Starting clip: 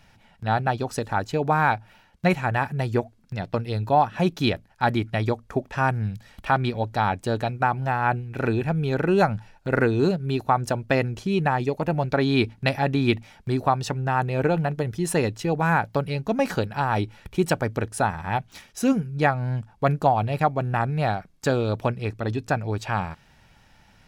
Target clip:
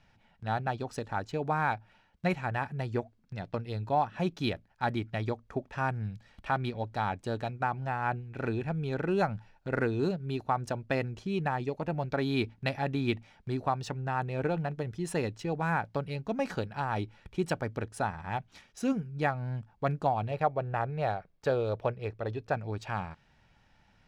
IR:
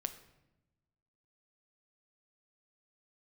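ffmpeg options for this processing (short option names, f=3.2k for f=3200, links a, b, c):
-filter_complex "[0:a]asettb=1/sr,asplit=3[a][b][c];[a]atrim=end=20.314[d];[b]atrim=start=20.31:end=22.54,asetpts=PTS-STARTPTS,afade=t=in:d=0.004:c=qsin,afade=t=out:st=2.226:d=0.004:c=qsin,equalizer=f=250:t=o:w=1:g=-7,equalizer=f=500:t=o:w=1:g=7,equalizer=f=8k:t=o:w=1:g=-10[e];[c]atrim=start=22.536[f];[d][e]acrossfade=d=0.004:c1=hsin:c2=qsin[g];[g][f]acrossfade=d=0.004:c1=qsin:c2=hsin,adynamicsmooth=sensitivity=7.5:basefreq=6.7k,volume=-8.5dB"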